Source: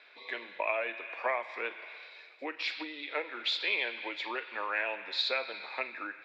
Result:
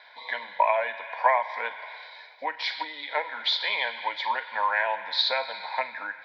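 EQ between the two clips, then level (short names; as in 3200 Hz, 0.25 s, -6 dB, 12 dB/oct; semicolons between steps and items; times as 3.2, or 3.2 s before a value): bell 1000 Hz +14 dB 0.51 oct; bell 2900 Hz +7 dB 0.24 oct; fixed phaser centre 1800 Hz, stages 8; +6.5 dB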